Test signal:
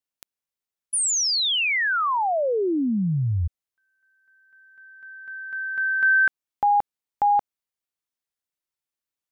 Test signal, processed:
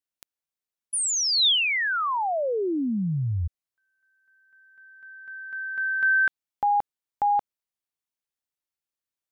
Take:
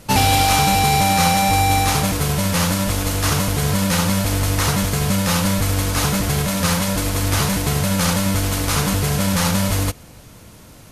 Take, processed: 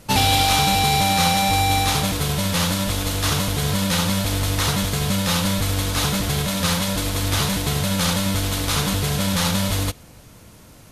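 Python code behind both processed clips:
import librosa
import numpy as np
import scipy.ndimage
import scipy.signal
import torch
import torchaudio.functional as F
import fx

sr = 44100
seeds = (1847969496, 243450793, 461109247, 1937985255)

y = fx.dynamic_eq(x, sr, hz=3600.0, q=2.5, threshold_db=-40.0, ratio=4.0, max_db=7)
y = y * 10.0 ** (-3.0 / 20.0)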